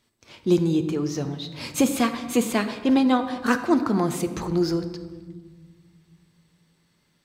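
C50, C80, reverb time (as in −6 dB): 10.5 dB, 12.0 dB, 1.5 s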